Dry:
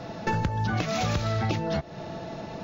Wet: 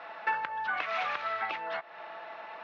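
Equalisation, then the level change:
flat-topped band-pass 1,600 Hz, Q 0.89
high-frequency loss of the air 100 metres
+3.5 dB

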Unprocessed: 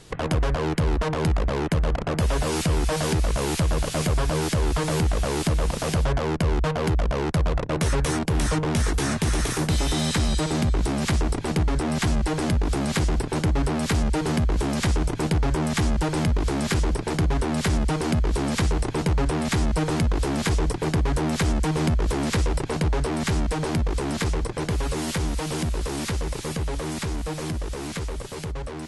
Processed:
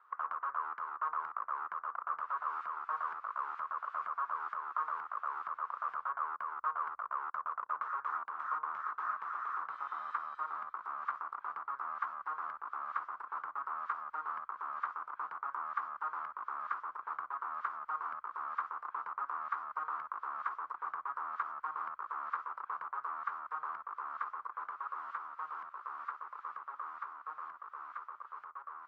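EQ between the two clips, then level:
flat-topped band-pass 1,200 Hz, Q 3.8
+2.0 dB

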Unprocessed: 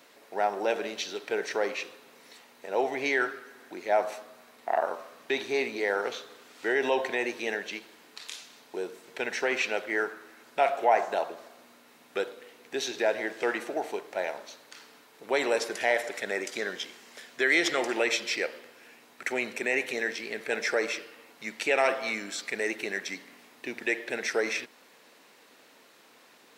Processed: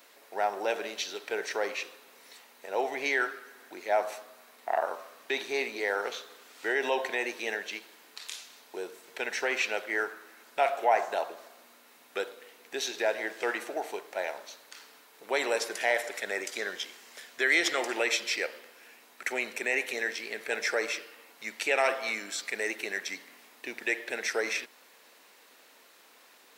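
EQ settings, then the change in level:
RIAA equalisation recording
parametric band 14,000 Hz −11.5 dB 2.4 octaves
0.0 dB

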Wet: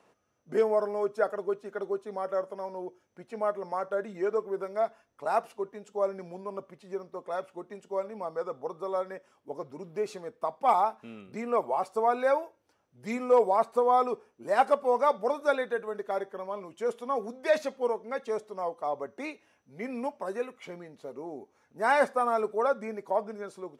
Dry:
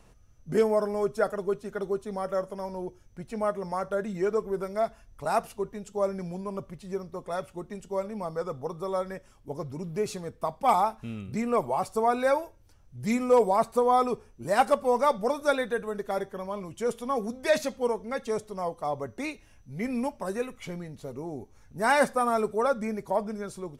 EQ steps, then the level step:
high-pass filter 340 Hz 12 dB per octave
high-shelf EQ 3,000 Hz −8 dB
high-shelf EQ 8,000 Hz −6 dB
0.0 dB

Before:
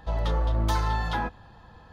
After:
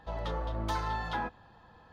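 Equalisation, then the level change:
low-shelf EQ 130 Hz −9 dB
high-shelf EQ 6,300 Hz −8.5 dB
−4.0 dB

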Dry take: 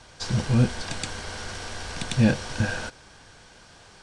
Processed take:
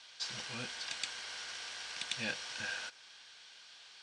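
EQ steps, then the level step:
dynamic equaliser 3,700 Hz, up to −5 dB, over −49 dBFS, Q 1.4
resonant band-pass 3,500 Hz, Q 1.5
+1.5 dB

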